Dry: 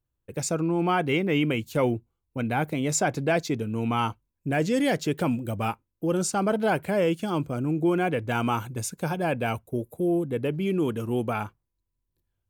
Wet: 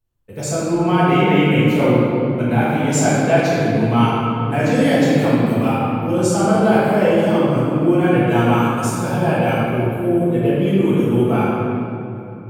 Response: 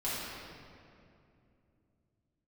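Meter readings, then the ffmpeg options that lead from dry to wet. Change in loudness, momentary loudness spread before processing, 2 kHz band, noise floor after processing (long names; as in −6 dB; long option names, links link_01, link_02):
+10.0 dB, 8 LU, +8.5 dB, −30 dBFS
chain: -filter_complex "[1:a]atrim=start_sample=2205,asetrate=38367,aresample=44100[link_01];[0:a][link_01]afir=irnorm=-1:irlink=0,volume=1.5dB"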